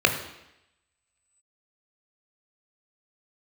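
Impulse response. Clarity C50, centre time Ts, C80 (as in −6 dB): 9.0 dB, 18 ms, 11.0 dB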